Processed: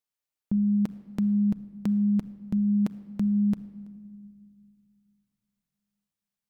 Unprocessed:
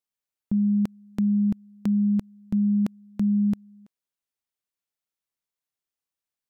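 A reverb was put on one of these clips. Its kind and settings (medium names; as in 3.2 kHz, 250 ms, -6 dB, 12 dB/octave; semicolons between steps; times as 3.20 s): simulated room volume 3000 m³, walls mixed, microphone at 0.47 m; trim -1 dB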